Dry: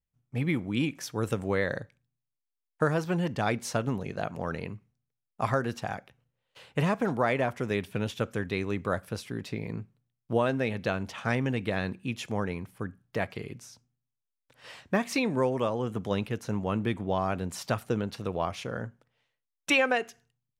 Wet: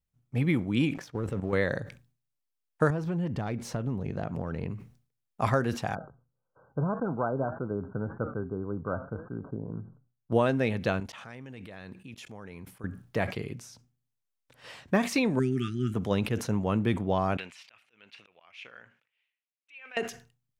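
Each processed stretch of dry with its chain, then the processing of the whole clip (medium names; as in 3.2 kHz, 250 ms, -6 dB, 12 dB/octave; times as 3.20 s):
0.94–1.53 s: low-pass 1.4 kHz 6 dB/octave + waveshaping leveller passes 1 + level held to a coarse grid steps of 11 dB
2.90–4.71 s: self-modulated delay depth 0.068 ms + tilt EQ -2 dB/octave + compression 4:1, threshold -31 dBFS
5.95–10.32 s: brick-wall FIR low-pass 1.6 kHz + flange 1.8 Hz, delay 5.7 ms, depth 2.1 ms, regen +83%
11.00–12.84 s: bass shelf 480 Hz -5 dB + level held to a coarse grid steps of 23 dB
15.39–15.94 s: brick-wall FIR band-stop 400–1200 Hz + comb 7.4 ms, depth 31%
17.37–19.97 s: compressor with a negative ratio -27 dBFS, ratio -0.5 + slow attack 260 ms + band-pass filter 2.5 kHz, Q 3.6
whole clip: bass shelf 450 Hz +3 dB; decay stretcher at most 130 dB/s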